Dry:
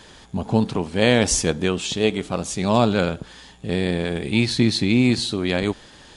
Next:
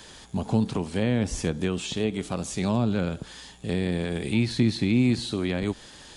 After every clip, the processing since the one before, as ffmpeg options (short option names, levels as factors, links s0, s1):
-filter_complex "[0:a]acrossover=split=2800[s0][s1];[s1]acompressor=threshold=0.0178:ratio=4:attack=1:release=60[s2];[s0][s2]amix=inputs=2:normalize=0,highshelf=f=5000:g=8.5,acrossover=split=290[s3][s4];[s4]acompressor=threshold=0.0501:ratio=6[s5];[s3][s5]amix=inputs=2:normalize=0,volume=0.75"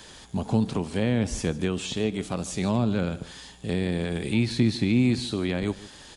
-af "aecho=1:1:150:0.119"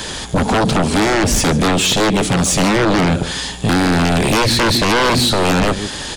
-af "aeval=exprs='0.299*sin(PI/2*7.08*val(0)/0.299)':c=same"